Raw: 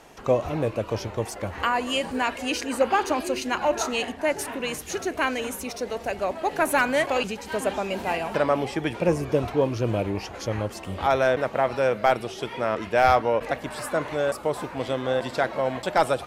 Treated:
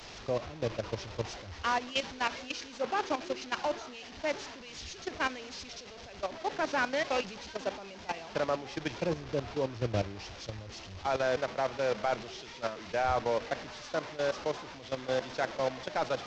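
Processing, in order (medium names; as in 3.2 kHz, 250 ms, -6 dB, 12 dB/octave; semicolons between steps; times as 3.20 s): one-bit delta coder 32 kbps, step -25 dBFS; level held to a coarse grid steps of 12 dB; three bands expanded up and down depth 70%; trim -5 dB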